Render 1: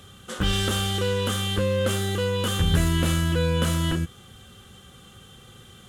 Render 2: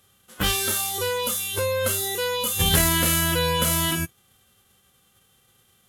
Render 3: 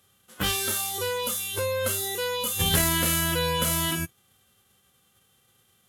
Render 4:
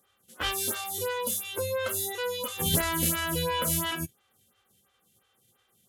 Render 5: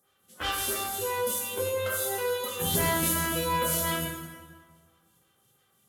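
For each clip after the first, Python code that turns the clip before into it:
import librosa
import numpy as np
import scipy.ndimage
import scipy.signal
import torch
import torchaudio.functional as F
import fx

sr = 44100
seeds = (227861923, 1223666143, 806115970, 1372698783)

y1 = fx.envelope_flatten(x, sr, power=0.6)
y1 = fx.noise_reduce_blind(y1, sr, reduce_db=15)
y1 = fx.peak_eq(y1, sr, hz=12000.0, db=9.5, octaves=0.51)
y2 = scipy.signal.sosfilt(scipy.signal.butter(2, 59.0, 'highpass', fs=sr, output='sos'), y1)
y2 = y2 * 10.0 ** (-3.0 / 20.0)
y3 = fx.stagger_phaser(y2, sr, hz=2.9)
y4 = fx.rev_plate(y3, sr, seeds[0], rt60_s=1.6, hf_ratio=0.7, predelay_ms=0, drr_db=-2.5)
y4 = y4 * 10.0 ** (-3.5 / 20.0)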